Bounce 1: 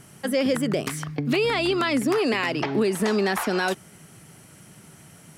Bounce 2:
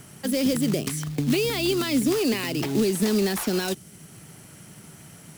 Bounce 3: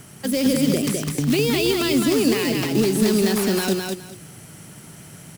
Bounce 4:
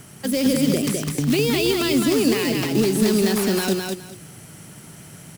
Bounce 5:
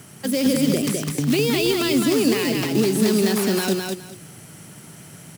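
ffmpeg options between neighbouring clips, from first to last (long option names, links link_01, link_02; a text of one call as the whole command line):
ffmpeg -i in.wav -filter_complex "[0:a]acrusher=bits=3:mode=log:mix=0:aa=0.000001,acrossover=split=410|3000[link_01][link_02][link_03];[link_02]acompressor=threshold=-59dB:ratio=1.5[link_04];[link_01][link_04][link_03]amix=inputs=3:normalize=0,volume=2.5dB" out.wav
ffmpeg -i in.wav -af "aecho=1:1:206|412|618:0.668|0.134|0.0267,volume=2.5dB" out.wav
ffmpeg -i in.wav -af anull out.wav
ffmpeg -i in.wav -af "highpass=87" out.wav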